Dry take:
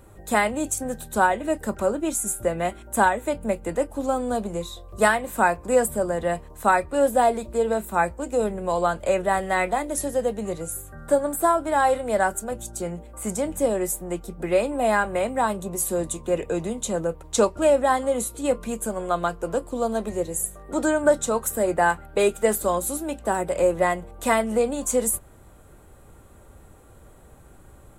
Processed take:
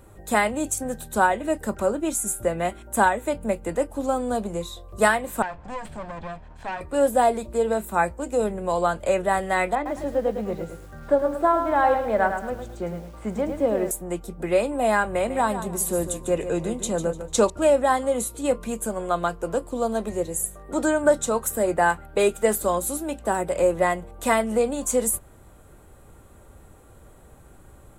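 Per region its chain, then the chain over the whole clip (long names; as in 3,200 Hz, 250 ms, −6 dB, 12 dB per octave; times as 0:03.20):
0:05.42–0:06.81: lower of the sound and its delayed copy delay 1.2 ms + high-frequency loss of the air 130 metres + downward compressor 2 to 1, threshold −36 dBFS
0:09.75–0:13.91: low-pass filter 2,600 Hz + feedback echo at a low word length 106 ms, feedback 35%, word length 8 bits, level −7 dB
0:15.08–0:17.50: parametric band 61 Hz +3.5 dB 2.3 octaves + repeating echo 149 ms, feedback 27%, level −10.5 dB
whole clip: no processing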